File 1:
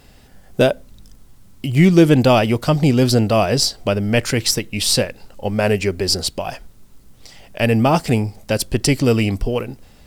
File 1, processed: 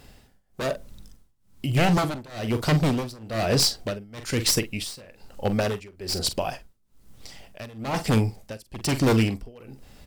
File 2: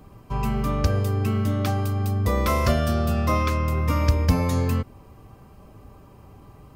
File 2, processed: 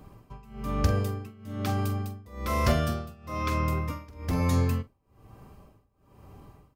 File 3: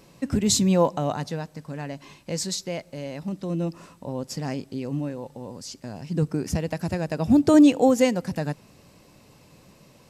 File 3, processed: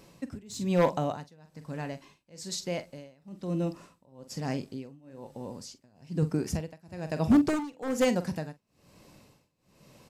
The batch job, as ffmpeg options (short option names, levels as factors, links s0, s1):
-filter_complex "[0:a]aeval=exprs='0.251*(abs(mod(val(0)/0.251+3,4)-2)-1)':c=same,asplit=2[s0][s1];[s1]adelay=45,volume=0.251[s2];[s0][s2]amix=inputs=2:normalize=0,tremolo=f=1.1:d=0.95,volume=0.794"